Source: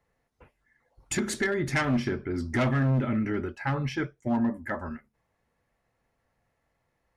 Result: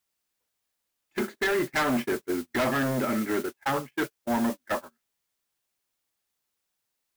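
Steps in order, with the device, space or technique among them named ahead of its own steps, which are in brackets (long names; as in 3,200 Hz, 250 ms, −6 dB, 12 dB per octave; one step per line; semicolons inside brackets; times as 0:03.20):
aircraft radio (band-pass filter 340–2,400 Hz; hard clipping −29.5 dBFS, distortion −10 dB; white noise bed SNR 12 dB; noise gate −35 dBFS, range −39 dB)
level +7.5 dB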